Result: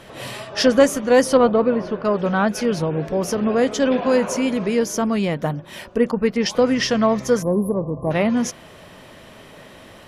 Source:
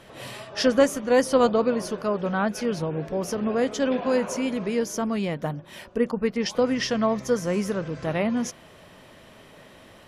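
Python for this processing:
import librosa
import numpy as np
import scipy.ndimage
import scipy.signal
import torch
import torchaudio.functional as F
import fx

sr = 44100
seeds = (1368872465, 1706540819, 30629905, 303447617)

p1 = fx.spec_erase(x, sr, start_s=7.42, length_s=0.69, low_hz=1200.0, high_hz=10000.0)
p2 = 10.0 ** (-18.5 / 20.0) * np.tanh(p1 / 10.0 ** (-18.5 / 20.0))
p3 = p1 + (p2 * 10.0 ** (-9.0 / 20.0))
p4 = fx.air_absorb(p3, sr, metres=320.0, at=(1.37, 2.05))
y = p4 * 10.0 ** (3.5 / 20.0)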